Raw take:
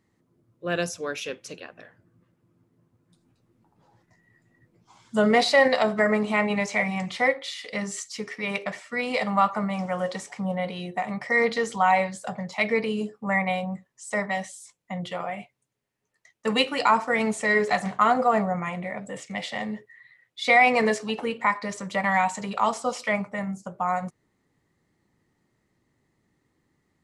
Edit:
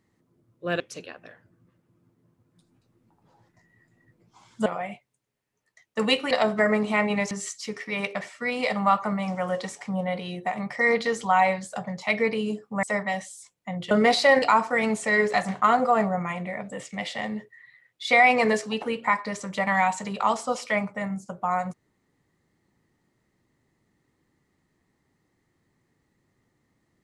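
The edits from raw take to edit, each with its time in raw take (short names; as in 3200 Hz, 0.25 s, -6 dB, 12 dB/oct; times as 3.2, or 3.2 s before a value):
0.8–1.34 cut
5.2–5.71 swap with 15.14–16.79
6.71–7.82 cut
13.34–14.06 cut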